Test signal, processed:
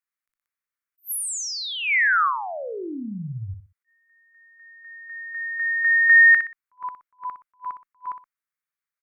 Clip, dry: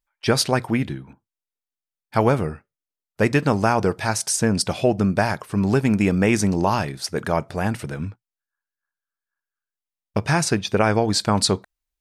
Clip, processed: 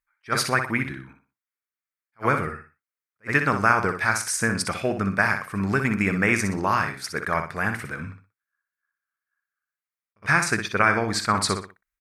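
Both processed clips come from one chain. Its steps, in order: treble shelf 9.4 kHz +6.5 dB; Chebyshev shaper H 3 -38 dB, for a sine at -4 dBFS; high-order bell 1.6 kHz +12.5 dB 1.3 oct; on a send: feedback delay 61 ms, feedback 29%, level -8 dB; on the sum: attacks held to a fixed rise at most 450 dB/s; trim -6.5 dB

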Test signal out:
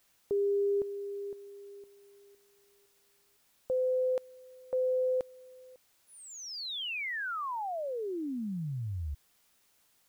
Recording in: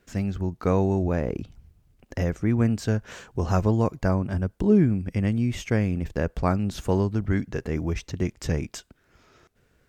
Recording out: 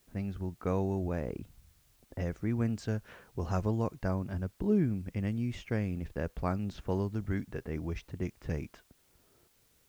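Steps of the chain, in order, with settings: level-controlled noise filter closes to 780 Hz, open at -19 dBFS; word length cut 10-bit, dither triangular; trim -9 dB

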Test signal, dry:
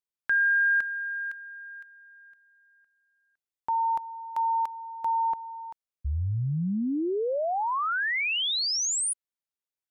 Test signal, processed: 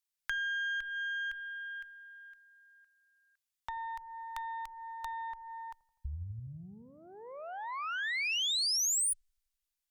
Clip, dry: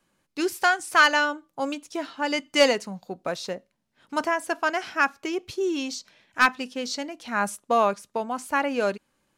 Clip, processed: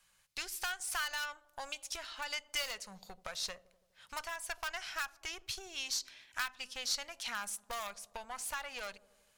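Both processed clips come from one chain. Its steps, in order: in parallel at -11 dB: integer overflow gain 15.5 dB; on the sum: compression 6:1, threshold -33 dBFS; Chebyshev shaper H 5 -41 dB, 8 -24 dB, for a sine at -17.5 dBFS; amplifier tone stack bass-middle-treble 10-0-10; feedback echo behind a low-pass 83 ms, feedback 67%, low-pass 540 Hz, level -15 dB; trim +3.5 dB

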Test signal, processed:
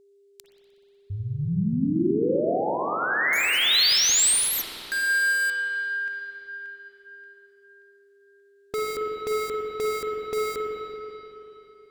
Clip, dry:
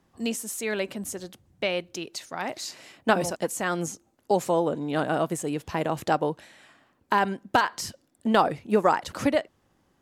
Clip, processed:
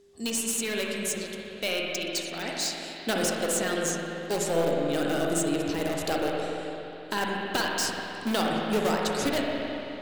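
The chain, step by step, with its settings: ten-band graphic EQ 125 Hz -6 dB, 1 kHz -9 dB, 4 kHz +7 dB, 8 kHz +8 dB; in parallel at -5.5 dB: integer overflow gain 20 dB; on the sum: thinning echo 61 ms, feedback 73%, level -22 dB; spring tank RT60 3.2 s, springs 42/48/54 ms, chirp 45 ms, DRR -2 dB; whistle 400 Hz -50 dBFS; trim -5.5 dB

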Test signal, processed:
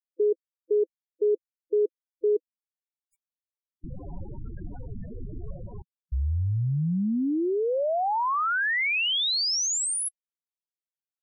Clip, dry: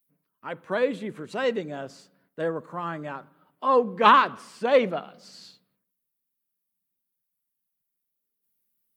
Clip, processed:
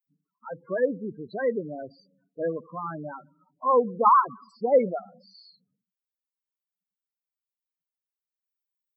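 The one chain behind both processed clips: loudest bins only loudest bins 8

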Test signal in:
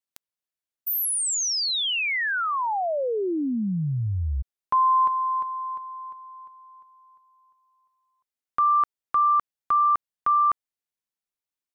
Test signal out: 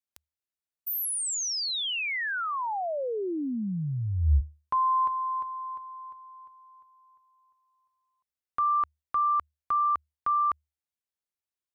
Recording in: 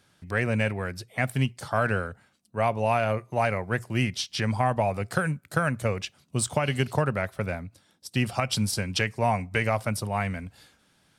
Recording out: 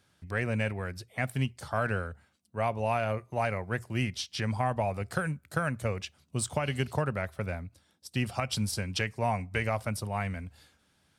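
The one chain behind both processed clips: peaking EQ 75 Hz +13 dB 0.29 oct; trim -5 dB

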